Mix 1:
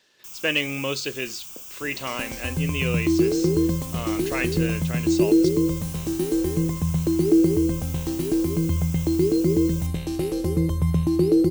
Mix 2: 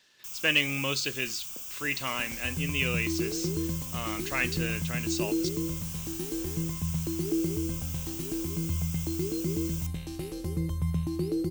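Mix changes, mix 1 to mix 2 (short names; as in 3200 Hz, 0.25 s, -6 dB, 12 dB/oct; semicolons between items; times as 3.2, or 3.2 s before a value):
second sound -6.5 dB; master: add bell 460 Hz -7 dB 1.7 oct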